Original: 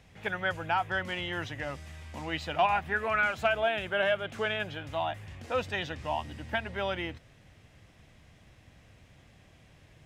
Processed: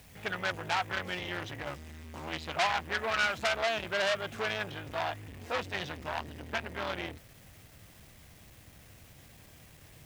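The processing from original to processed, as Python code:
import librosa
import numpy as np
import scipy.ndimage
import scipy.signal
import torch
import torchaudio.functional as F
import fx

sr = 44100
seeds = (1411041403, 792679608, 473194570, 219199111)

p1 = fx.quant_dither(x, sr, seeds[0], bits=8, dither='triangular')
p2 = x + (p1 * 10.0 ** (-11.5 / 20.0))
y = fx.transformer_sat(p2, sr, knee_hz=3800.0)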